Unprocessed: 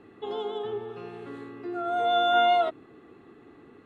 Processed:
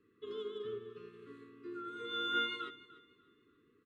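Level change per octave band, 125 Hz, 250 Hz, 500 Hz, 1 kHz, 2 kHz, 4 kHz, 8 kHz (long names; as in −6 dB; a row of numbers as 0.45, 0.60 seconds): −11.5 dB, −10.0 dB, −16.0 dB, −17.0 dB, −7.5 dB, −7.0 dB, can't be measured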